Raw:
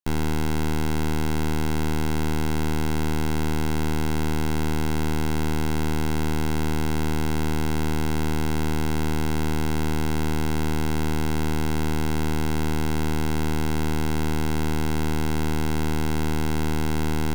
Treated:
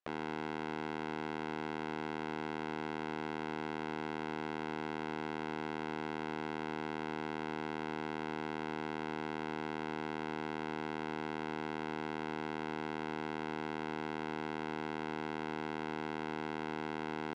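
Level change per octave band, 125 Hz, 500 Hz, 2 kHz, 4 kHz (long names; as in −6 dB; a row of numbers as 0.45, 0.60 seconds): −24.0, −9.5, −8.5, −14.0 decibels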